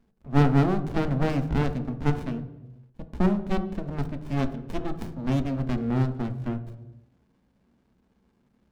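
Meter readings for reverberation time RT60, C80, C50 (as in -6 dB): 1.1 s, 15.0 dB, 12.0 dB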